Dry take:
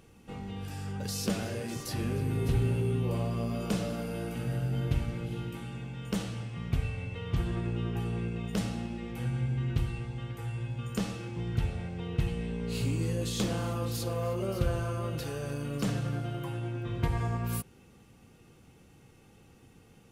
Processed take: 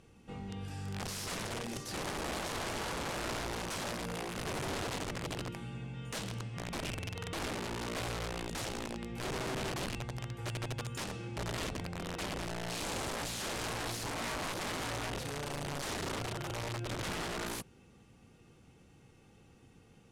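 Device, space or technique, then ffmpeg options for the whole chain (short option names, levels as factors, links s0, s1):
overflowing digital effects unit: -af "aeval=exprs='(mod(29.9*val(0)+1,2)-1)/29.9':c=same,lowpass=9800,volume=0.708"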